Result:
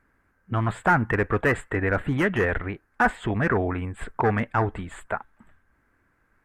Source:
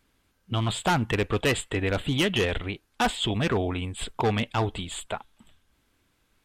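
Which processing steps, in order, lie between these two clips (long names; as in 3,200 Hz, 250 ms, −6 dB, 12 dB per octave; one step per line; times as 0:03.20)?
high shelf with overshoot 2,400 Hz −12 dB, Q 3
level +1.5 dB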